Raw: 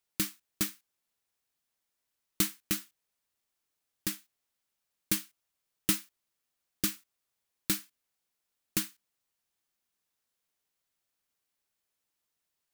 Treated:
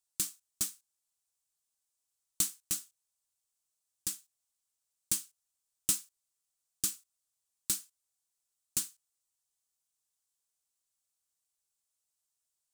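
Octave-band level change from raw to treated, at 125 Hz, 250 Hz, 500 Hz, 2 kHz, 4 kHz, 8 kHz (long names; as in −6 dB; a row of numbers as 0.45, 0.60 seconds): −10.5, −14.5, −13.0, −11.0, −4.0, +3.0 decibels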